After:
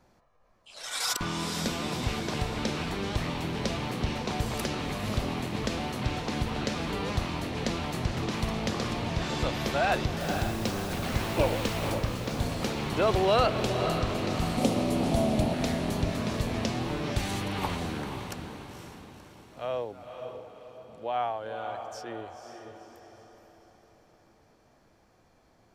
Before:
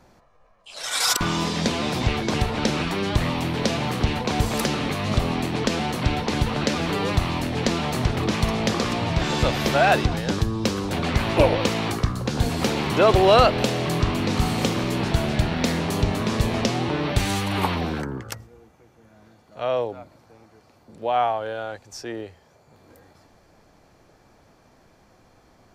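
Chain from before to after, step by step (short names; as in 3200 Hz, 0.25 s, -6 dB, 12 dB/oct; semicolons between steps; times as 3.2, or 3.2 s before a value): 10.19–11.93 added noise pink -33 dBFS; 14.57–15.54 fifteen-band EQ 250 Hz +10 dB, 630 Hz +11 dB, 1600 Hz -7 dB, 10000 Hz +8 dB; diffused feedback echo 0.505 s, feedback 47%, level -7 dB; gain -8.5 dB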